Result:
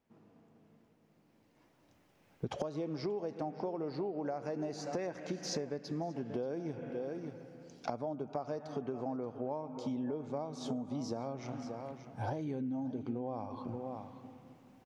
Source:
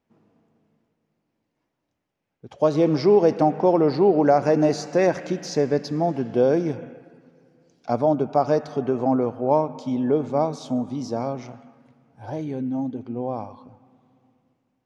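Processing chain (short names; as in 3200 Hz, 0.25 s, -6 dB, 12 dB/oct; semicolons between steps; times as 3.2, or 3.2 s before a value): recorder AGC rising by 7.2 dB/s; on a send: echo 0.581 s -16.5 dB; on the sum: compressor 16:1, threshold -31 dBFS, peak gain reduction 20 dB; gain -3 dB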